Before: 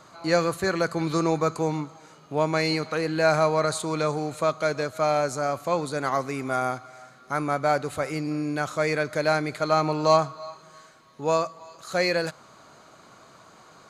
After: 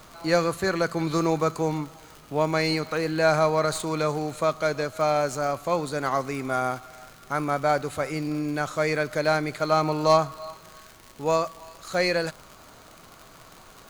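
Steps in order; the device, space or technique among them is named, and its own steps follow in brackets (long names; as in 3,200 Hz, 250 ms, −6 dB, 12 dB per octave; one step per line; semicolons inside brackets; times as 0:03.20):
record under a worn stylus (stylus tracing distortion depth 0.02 ms; surface crackle 100 per second −33 dBFS; pink noise bed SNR 28 dB)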